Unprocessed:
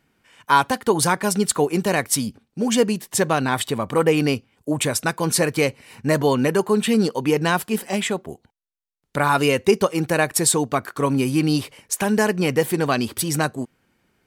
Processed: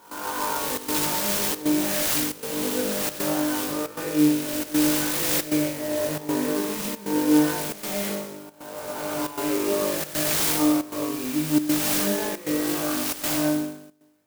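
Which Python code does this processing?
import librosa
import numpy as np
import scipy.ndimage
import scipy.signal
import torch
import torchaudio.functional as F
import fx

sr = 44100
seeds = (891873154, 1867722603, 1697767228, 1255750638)

p1 = fx.spec_swells(x, sr, rise_s=2.14)
p2 = fx.sample_hold(p1, sr, seeds[0], rate_hz=2000.0, jitter_pct=0)
p3 = p1 + (p2 * librosa.db_to_amplitude(-9.5))
p4 = fx.peak_eq(p3, sr, hz=10000.0, db=13.0, octaves=0.77)
p5 = 10.0 ** (-8.5 / 20.0) * np.tanh(p4 / 10.0 ** (-8.5 / 20.0))
p6 = scipy.signal.sosfilt(scipy.signal.butter(2, 130.0, 'highpass', fs=sr, output='sos'), p5)
p7 = fx.comb_fb(p6, sr, f0_hz=300.0, decay_s=0.65, harmonics='all', damping=0.0, mix_pct=90)
p8 = p7 + fx.room_flutter(p7, sr, wall_m=3.4, rt60_s=0.88, dry=0)
p9 = fx.step_gate(p8, sr, bpm=136, pattern='.xxxxxx.xxxxxx', floor_db=-12.0, edge_ms=4.5)
y = fx.clock_jitter(p9, sr, seeds[1], jitter_ms=0.068)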